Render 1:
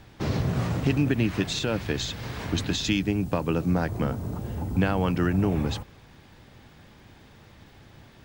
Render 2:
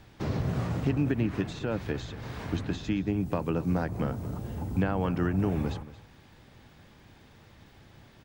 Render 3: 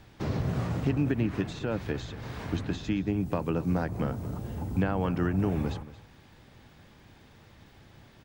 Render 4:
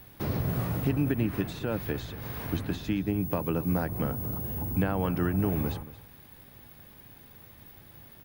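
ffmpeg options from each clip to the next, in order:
-filter_complex "[0:a]acrossover=split=1900[s0][s1];[s1]acompressor=threshold=0.00501:ratio=4[s2];[s0][s2]amix=inputs=2:normalize=0,aecho=1:1:227:0.15,volume=0.668"
-af anull
-af "aexciter=amount=13.1:drive=2.6:freq=10000"

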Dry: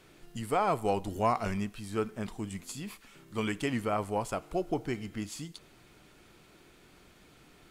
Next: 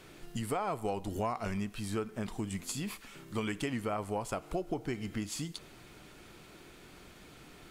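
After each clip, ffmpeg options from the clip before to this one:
-af "acompressor=threshold=0.0141:ratio=4,volume=1.68"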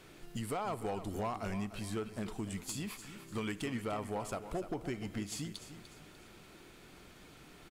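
-af "asoftclip=type=hard:threshold=0.0376,aecho=1:1:297|594|891|1188:0.251|0.0929|0.0344|0.0127,volume=0.75"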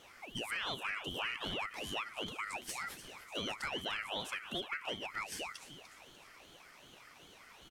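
-af "afftfilt=real='real(if(lt(b,272),68*(eq(floor(b/68),0)*1+eq(floor(b/68),1)*0+eq(floor(b/68),2)*3+eq(floor(b/68),3)*2)+mod(b,68),b),0)':imag='imag(if(lt(b,272),68*(eq(floor(b/68),0)*1+eq(floor(b/68),1)*0+eq(floor(b/68),2)*3+eq(floor(b/68),3)*2)+mod(b,68),b),0)':win_size=2048:overlap=0.75,aeval=exprs='val(0)*sin(2*PI*880*n/s+880*0.7/2.6*sin(2*PI*2.6*n/s))':c=same,volume=1.12"

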